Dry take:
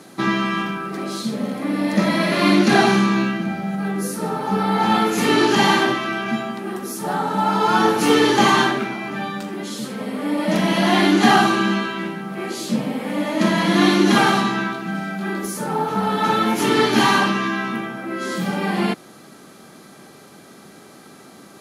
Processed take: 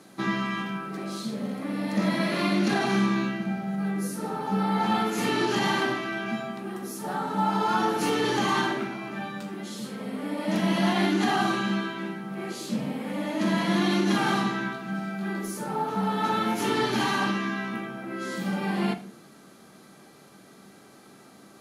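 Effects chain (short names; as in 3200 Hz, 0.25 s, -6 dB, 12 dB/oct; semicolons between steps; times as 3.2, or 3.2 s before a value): limiter -8 dBFS, peak gain reduction 6 dB; on a send: reverb RT60 0.50 s, pre-delay 9 ms, DRR 7 dB; on the sum: gain -8.5 dB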